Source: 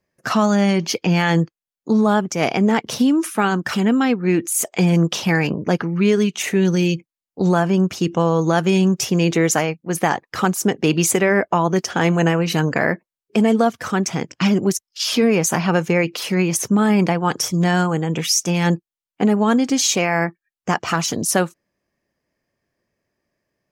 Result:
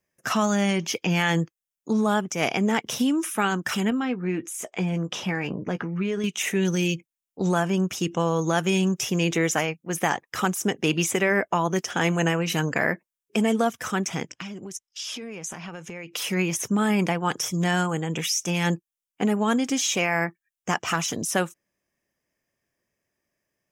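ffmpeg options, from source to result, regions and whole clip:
-filter_complex "[0:a]asettb=1/sr,asplit=3[s0][s1][s2];[s0]atrim=end=3.904[s3];[s1]atrim=start=3.9:end=6.24,asetpts=PTS-STARTPTS,afade=t=in:d=0.004:c=qsin,afade=t=out:st=2.336:d=0.004:c=qsin,acompressor=threshold=0.1:ratio=2:attack=3.2:release=140:knee=1:detection=peak,aemphasis=mode=reproduction:type=75fm,asplit=2[s4][s5];[s5]adelay=16,volume=0.266[s6];[s4][s6]amix=inputs=2:normalize=0,atrim=end_sample=103194[s7];[s2]atrim=start=6.236[s8];[s3][s7]acrossfade=d=0.004:c1=hsin:c2=qsin[s9];[s9][s8]acrossfade=d=0.004:c1=qsin:c2=hsin,asettb=1/sr,asplit=3[s10][s11][s12];[s10]atrim=end=14.284[s13];[s11]atrim=start=14.28:end=16.13,asetpts=PTS-STARTPTS,afade=t=in:d=0.004:c=qsin,afade=t=out:st=1.846:d=0.004:c=qsin,lowpass=8100,acompressor=threshold=0.0355:ratio=5:attack=3.2:release=140:knee=1:detection=peak[s14];[s12]atrim=start=16.126[s15];[s13][s14]acrossfade=d=0.004:c1=hsin:c2=qsin[s16];[s16][s15]acrossfade=d=0.004:c1=qsin:c2=hsin,equalizer=f=4400:t=o:w=0.26:g=-13,acrossover=split=4300[s17][s18];[s18]acompressor=threshold=0.0282:ratio=4:attack=1:release=60[s19];[s17][s19]amix=inputs=2:normalize=0,highshelf=f=2300:g=10.5,volume=0.447"

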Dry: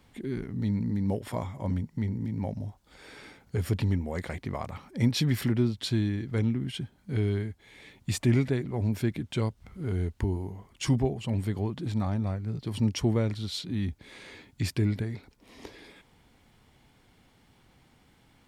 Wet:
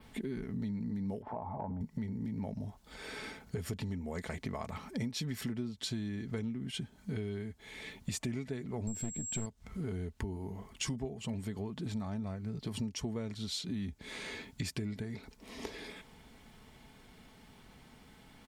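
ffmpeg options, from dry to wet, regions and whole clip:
-filter_complex "[0:a]asettb=1/sr,asplit=3[s0][s1][s2];[s0]atrim=end=1.224[s3];[s1]atrim=start=1.22:end=1.81,asetpts=PTS-STARTPTS,afade=t=in:d=0.004:c=qsin,afade=t=out:st=0.586:d=0.004:c=qsin,lowpass=f=830:t=q:w=5.5,acompressor=threshold=0.0178:ratio=4:attack=3.2:release=140:knee=1:detection=peak[s4];[s2]atrim=start=1.806[s5];[s3][s4]acrossfade=d=0.004:c1=hsin:c2=qsin[s6];[s6][s5]acrossfade=d=0.004:c1=qsin:c2=hsin,asettb=1/sr,asplit=3[s7][s8][s9];[s7]atrim=end=8.874[s10];[s8]atrim=start=8.87:end=9.46,asetpts=PTS-STARTPTS,afade=t=in:d=0.004:c=qsin,afade=t=out:st=0.586:d=0.004:c=qsin,lowshelf=f=390:g=8,aeval=exprs='(tanh(7.94*val(0)+0.6)-tanh(0.6))/7.94':c=same,aeval=exprs='val(0)+0.0141*sin(2*PI*7600*n/s)':c=same[s11];[s9]atrim=start=9.456[s12];[s10][s11]acrossfade=d=0.004:c1=hsin:c2=qsin[s13];[s13][s12]acrossfade=d=0.004:c1=qsin:c2=hsin,aecho=1:1:4.6:0.38,adynamicequalizer=threshold=0.00141:dfrequency=6900:dqfactor=1.6:tfrequency=6900:tqfactor=1.6:attack=5:release=100:ratio=0.375:range=3:mode=boostabove:tftype=bell,acompressor=threshold=0.0112:ratio=6,volume=1.5"

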